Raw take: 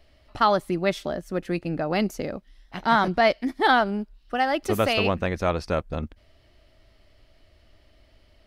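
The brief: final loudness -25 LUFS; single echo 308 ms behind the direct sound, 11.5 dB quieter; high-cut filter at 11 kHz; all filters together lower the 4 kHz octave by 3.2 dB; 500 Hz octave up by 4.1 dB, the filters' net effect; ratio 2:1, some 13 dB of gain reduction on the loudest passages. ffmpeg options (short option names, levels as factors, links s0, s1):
-af "lowpass=11000,equalizer=f=500:t=o:g=5.5,equalizer=f=4000:t=o:g=-4.5,acompressor=threshold=0.0126:ratio=2,aecho=1:1:308:0.266,volume=2.82"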